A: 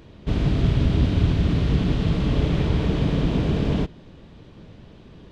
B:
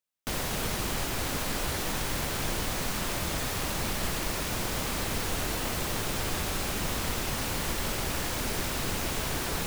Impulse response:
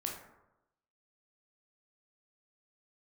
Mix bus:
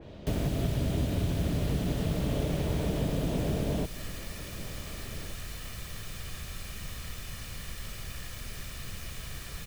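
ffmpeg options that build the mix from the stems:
-filter_complex "[0:a]equalizer=f=610:t=o:w=0.62:g=8,volume=0.841[s0];[1:a]equalizer=f=620:t=o:w=2.2:g=-12.5,aecho=1:1:1.7:0.47,volume=0.447[s1];[s0][s1]amix=inputs=2:normalize=0,equalizer=f=1100:t=o:w=0.28:g=-2.5,acrossover=split=80|2900[s2][s3][s4];[s2]acompressor=threshold=0.0178:ratio=4[s5];[s3]acompressor=threshold=0.0355:ratio=4[s6];[s4]acompressor=threshold=0.00282:ratio=4[s7];[s5][s6][s7]amix=inputs=3:normalize=0,adynamicequalizer=threshold=0.001:dfrequency=3100:dqfactor=0.7:tfrequency=3100:tqfactor=0.7:attack=5:release=100:ratio=0.375:range=2:mode=boostabove:tftype=highshelf"

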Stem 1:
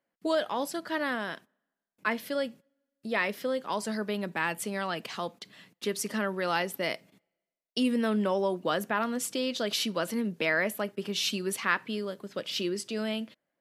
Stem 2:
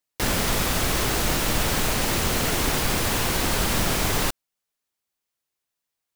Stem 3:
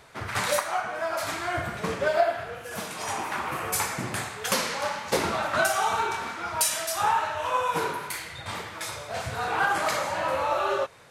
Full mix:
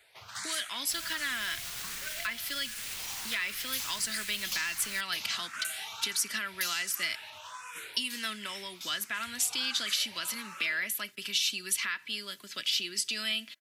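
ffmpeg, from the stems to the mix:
-filter_complex "[0:a]aecho=1:1:3:0.38,adelay=200,volume=1.33[s0];[1:a]alimiter=limit=0.158:level=0:latency=1,adelay=700,volume=0.119[s1];[2:a]aeval=exprs='0.178*(abs(mod(val(0)/0.178+3,4)-2)-1)':c=same,asplit=2[s2][s3];[s3]afreqshift=1.4[s4];[s2][s4]amix=inputs=2:normalize=1,volume=0.251[s5];[s0][s1]amix=inputs=2:normalize=0,alimiter=limit=0.112:level=0:latency=1:release=414,volume=1[s6];[s5][s6]amix=inputs=2:normalize=0,acrossover=split=230|1600[s7][s8][s9];[s7]acompressor=threshold=0.01:ratio=4[s10];[s8]acompressor=threshold=0.00178:ratio=4[s11];[s9]acompressor=threshold=0.0158:ratio=4[s12];[s10][s11][s12]amix=inputs=3:normalize=0,tiltshelf=f=700:g=-9.5"

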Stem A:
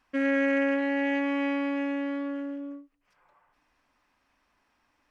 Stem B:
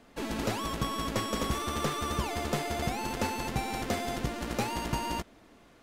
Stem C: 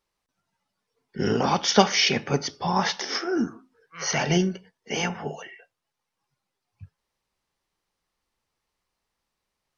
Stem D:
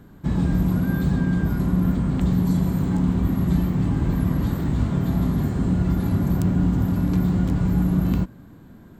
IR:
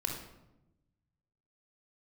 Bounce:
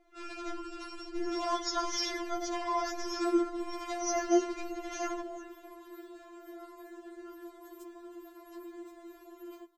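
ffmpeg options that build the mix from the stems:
-filter_complex "[0:a]lowpass=1000,volume=0.447[s0];[1:a]lowpass=f=6900:w=0.5412,lowpass=f=6900:w=1.3066,acrossover=split=650[s1][s2];[s1]aeval=exprs='val(0)*(1-0.7/2+0.7/2*cos(2*PI*1.7*n/s))':c=same[s3];[s2]aeval=exprs='val(0)*(1-0.7/2-0.7/2*cos(2*PI*1.7*n/s))':c=same[s4];[s3][s4]amix=inputs=2:normalize=0,volume=0.631,asplit=2[s5][s6];[s6]volume=0.224[s7];[2:a]firequalizer=gain_entry='entry(1300,0);entry(2800,-15);entry(7000,3)':delay=0.05:min_phase=1,volume=0.473,asplit=2[s8][s9];[s9]volume=0.2[s10];[3:a]highpass=41,adelay=1400,volume=0.2[s11];[4:a]atrim=start_sample=2205[s12];[s7][s10]amix=inputs=2:normalize=0[s13];[s13][s12]afir=irnorm=-1:irlink=0[s14];[s0][s5][s8][s11][s14]amix=inputs=5:normalize=0,afftfilt=real='re*4*eq(mod(b,16),0)':imag='im*4*eq(mod(b,16),0)':win_size=2048:overlap=0.75"

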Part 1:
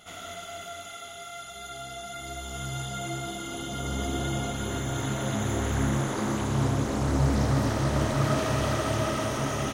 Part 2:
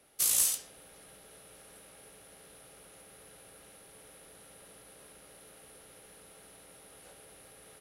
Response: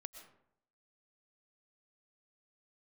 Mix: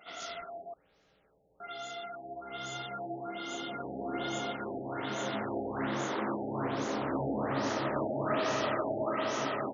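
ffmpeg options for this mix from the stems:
-filter_complex "[0:a]highpass=300,volume=0.841,asplit=3[s0][s1][s2];[s0]atrim=end=0.74,asetpts=PTS-STARTPTS,afade=t=out:st=0.736:d=0.004:c=hsin[s3];[s1]atrim=start=0.74:end=1.6,asetpts=PTS-STARTPTS,volume=0[s4];[s2]atrim=start=1.6,asetpts=PTS-STARTPTS,afade=t=in:d=0.004:c=hsin[s5];[s3][s4][s5]concat=n=3:v=0:a=1[s6];[1:a]volume=0.237,asplit=2[s7][s8];[s8]volume=0.355[s9];[2:a]atrim=start_sample=2205[s10];[s9][s10]afir=irnorm=-1:irlink=0[s11];[s6][s7][s11]amix=inputs=3:normalize=0,asoftclip=type=hard:threshold=0.0708,afftfilt=real='re*lt(b*sr/1024,840*pow(7200/840,0.5+0.5*sin(2*PI*1.2*pts/sr)))':imag='im*lt(b*sr/1024,840*pow(7200/840,0.5+0.5*sin(2*PI*1.2*pts/sr)))':win_size=1024:overlap=0.75"

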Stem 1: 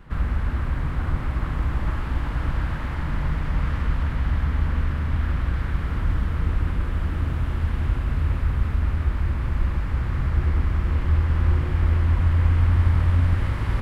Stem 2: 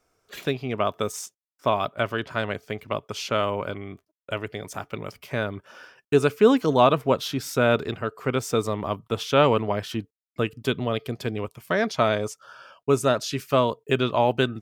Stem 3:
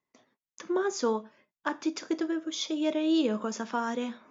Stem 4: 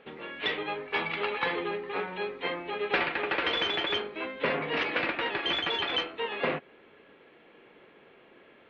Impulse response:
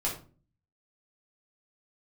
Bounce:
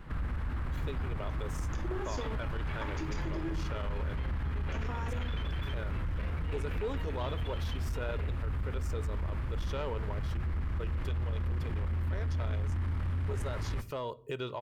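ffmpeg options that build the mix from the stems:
-filter_complex "[0:a]volume=0.841,asplit=2[s0][s1];[s1]volume=0.075[s2];[1:a]aecho=1:1:2.1:0.4,adelay=400,volume=0.376,asplit=2[s3][s4];[s4]volume=0.0708[s5];[2:a]acompressor=threshold=0.0224:ratio=6,adelay=1150,volume=0.944,asplit=3[s6][s7][s8];[s6]atrim=end=3.6,asetpts=PTS-STARTPTS,afade=t=out:st=3.596:d=0.004:c=hsin[s9];[s7]atrim=start=3.6:end=4.72,asetpts=PTS-STARTPTS,volume=0[s10];[s8]atrim=start=4.72,asetpts=PTS-STARTPTS,afade=t=in:d=0.004:c=hsin[s11];[s9][s10][s11]concat=n=3:v=0:a=1,asplit=2[s12][s13];[s13]volume=0.596[s14];[3:a]adelay=1750,volume=0.335[s15];[4:a]atrim=start_sample=2205[s16];[s2][s5][s14]amix=inputs=3:normalize=0[s17];[s17][s16]afir=irnorm=-1:irlink=0[s18];[s0][s3][s12][s15][s18]amix=inputs=5:normalize=0,asoftclip=type=tanh:threshold=0.15,alimiter=level_in=1.58:limit=0.0631:level=0:latency=1:release=154,volume=0.631"

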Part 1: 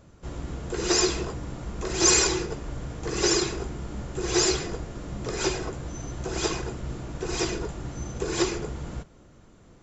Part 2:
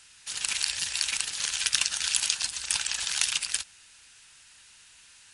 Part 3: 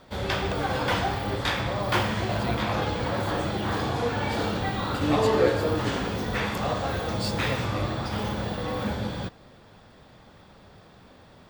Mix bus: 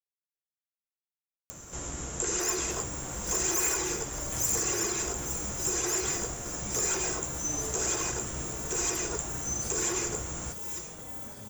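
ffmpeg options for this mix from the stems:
-filter_complex "[0:a]lowshelf=f=470:g=-9,asoftclip=type=hard:threshold=0.126,adelay=1500,volume=1.33,asplit=2[s0][s1];[s1]volume=0.0708[s2];[2:a]asplit=2[s3][s4];[s4]adelay=4.6,afreqshift=-0.57[s5];[s3][s5]amix=inputs=2:normalize=1,adelay=2400,volume=0.133,asplit=2[s6][s7];[s7]volume=0.376[s8];[s0]acrossover=split=2600[s9][s10];[s10]acompressor=threshold=0.0158:ratio=4:attack=1:release=60[s11];[s9][s11]amix=inputs=2:normalize=0,alimiter=level_in=1.19:limit=0.0631:level=0:latency=1:release=59,volume=0.841,volume=1[s12];[s2][s8]amix=inputs=2:normalize=0,aecho=0:1:860|1720|2580|3440|4300:1|0.38|0.144|0.0549|0.0209[s13];[s6][s12][s13]amix=inputs=3:normalize=0,acompressor=mode=upward:threshold=0.00891:ratio=2.5,aexciter=amount=6.8:drive=7.4:freq=6400"

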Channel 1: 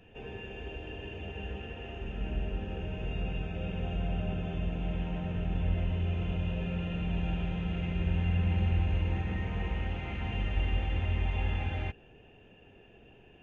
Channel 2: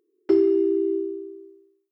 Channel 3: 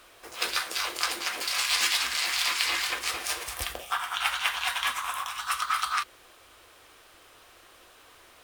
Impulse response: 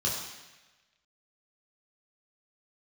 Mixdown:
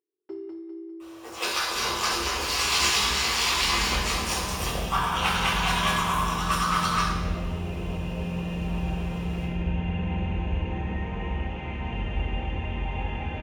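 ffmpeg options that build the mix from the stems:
-filter_complex "[0:a]adelay=1600,volume=1.33,asplit=2[s0][s1];[s1]volume=0.178[s2];[1:a]volume=0.106,asplit=2[s3][s4];[s4]volume=0.668[s5];[2:a]adelay=1000,volume=0.75,asplit=2[s6][s7];[s7]volume=0.708[s8];[3:a]atrim=start_sample=2205[s9];[s2][s8]amix=inputs=2:normalize=0[s10];[s10][s9]afir=irnorm=-1:irlink=0[s11];[s5]aecho=0:1:200|400|600|800|1000|1200:1|0.43|0.185|0.0795|0.0342|0.0147[s12];[s0][s3][s6][s11][s12]amix=inputs=5:normalize=0,equalizer=f=900:t=o:w=0.46:g=7"

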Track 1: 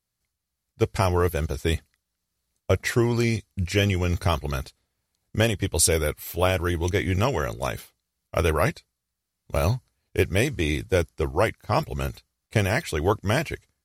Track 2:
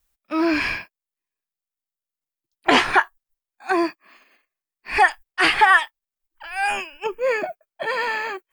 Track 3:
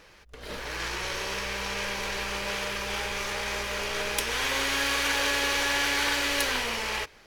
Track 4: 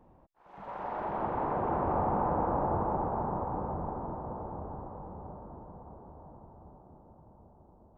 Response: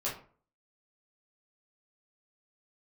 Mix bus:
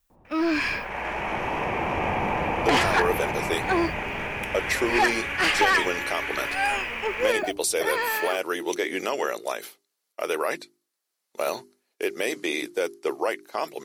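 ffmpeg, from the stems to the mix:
-filter_complex "[0:a]highpass=f=310:w=0.5412,highpass=f=310:w=1.3066,bandreject=f=50:t=h:w=6,bandreject=f=100:t=h:w=6,bandreject=f=150:t=h:w=6,bandreject=f=200:t=h:w=6,bandreject=f=250:t=h:w=6,bandreject=f=300:t=h:w=6,bandreject=f=350:t=h:w=6,bandreject=f=400:t=h:w=6,alimiter=limit=0.141:level=0:latency=1:release=122,adelay=1850,volume=1.33[s0];[1:a]asoftclip=type=tanh:threshold=0.168,volume=0.841[s1];[2:a]highshelf=f=3200:t=q:w=3:g=-9.5,acompressor=threshold=0.0447:ratio=3,adelay=250,volume=0.794[s2];[3:a]adelay=100,volume=1.33[s3];[s0][s1][s2][s3]amix=inputs=4:normalize=0"

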